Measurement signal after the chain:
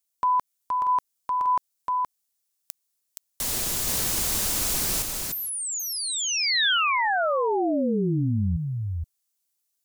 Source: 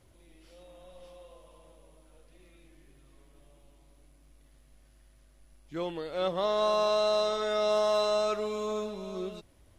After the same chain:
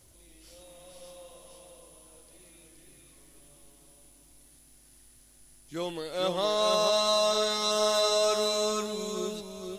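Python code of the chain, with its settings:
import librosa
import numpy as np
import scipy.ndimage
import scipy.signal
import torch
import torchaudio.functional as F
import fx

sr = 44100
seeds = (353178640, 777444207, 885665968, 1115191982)

p1 = fx.bass_treble(x, sr, bass_db=0, treble_db=14)
p2 = p1 + fx.echo_single(p1, sr, ms=471, db=-3.5, dry=0)
y = fx.over_compress(p2, sr, threshold_db=-24.0, ratio=-1.0)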